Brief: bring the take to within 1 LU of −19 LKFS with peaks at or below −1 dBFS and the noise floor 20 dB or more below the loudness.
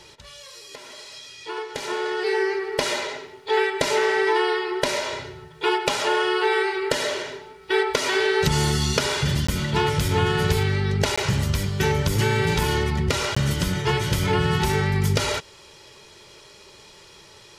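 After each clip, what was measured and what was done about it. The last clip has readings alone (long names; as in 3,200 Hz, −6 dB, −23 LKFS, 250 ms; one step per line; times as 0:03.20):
number of dropouts 3; longest dropout 15 ms; integrated loudness −22.5 LKFS; sample peak −5.5 dBFS; target loudness −19.0 LKFS
→ repair the gap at 0:09.47/0:11.16/0:13.35, 15 ms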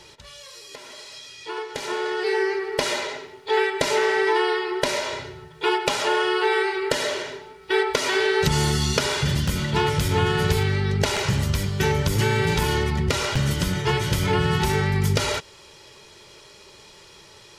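number of dropouts 0; integrated loudness −22.5 LKFS; sample peak −5.5 dBFS; target loudness −19.0 LKFS
→ level +3.5 dB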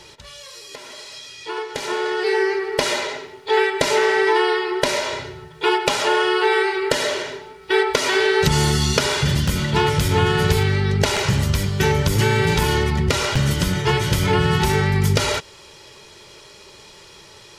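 integrated loudness −19.0 LKFS; sample peak −2.0 dBFS; background noise floor −45 dBFS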